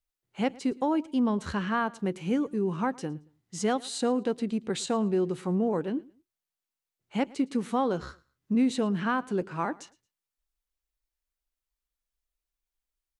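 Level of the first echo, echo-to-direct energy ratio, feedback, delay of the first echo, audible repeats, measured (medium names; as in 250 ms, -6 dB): -23.0 dB, -22.5 dB, 27%, 112 ms, 2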